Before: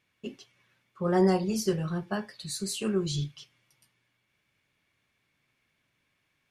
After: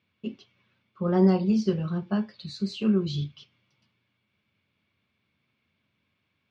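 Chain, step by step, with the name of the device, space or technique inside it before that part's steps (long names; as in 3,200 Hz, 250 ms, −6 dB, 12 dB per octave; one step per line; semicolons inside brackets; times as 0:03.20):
guitar cabinet (loudspeaker in its box 75–4,500 Hz, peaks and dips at 88 Hz +10 dB, 210 Hz +9 dB, 780 Hz −3 dB, 1,800 Hz −7 dB)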